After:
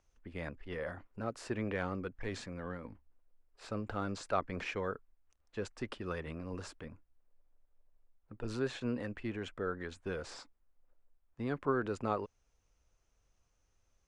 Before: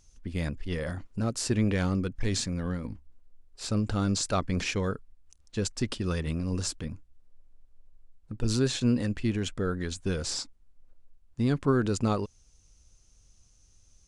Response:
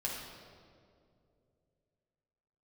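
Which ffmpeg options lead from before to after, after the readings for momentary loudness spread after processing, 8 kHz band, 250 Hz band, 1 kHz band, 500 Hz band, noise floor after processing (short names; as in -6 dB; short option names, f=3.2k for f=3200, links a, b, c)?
12 LU, -19.5 dB, -11.5 dB, -3.0 dB, -5.5 dB, -77 dBFS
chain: -filter_complex "[0:a]acrossover=split=390 2500:gain=0.251 1 0.126[a][b][c];[a][b][c]amix=inputs=3:normalize=0,volume=-2.5dB"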